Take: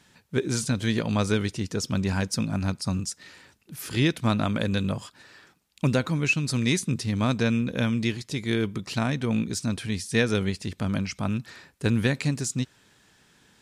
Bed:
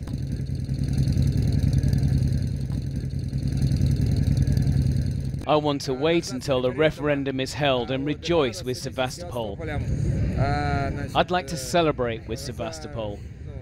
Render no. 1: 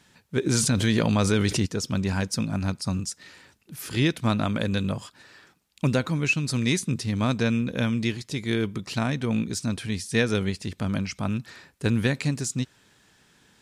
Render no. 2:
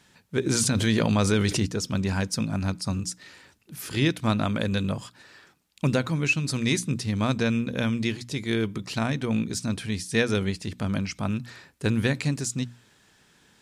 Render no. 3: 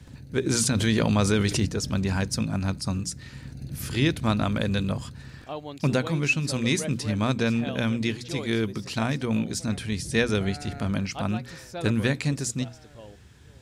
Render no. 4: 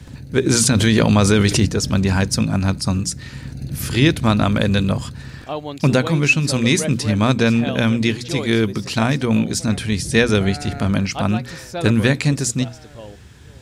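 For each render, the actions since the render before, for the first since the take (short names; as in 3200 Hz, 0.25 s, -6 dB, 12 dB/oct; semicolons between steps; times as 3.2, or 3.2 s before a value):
0.46–1.66 fast leveller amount 70%
notches 60/120/180/240/300 Hz
add bed -15 dB
gain +8.5 dB; limiter -3 dBFS, peak gain reduction 2 dB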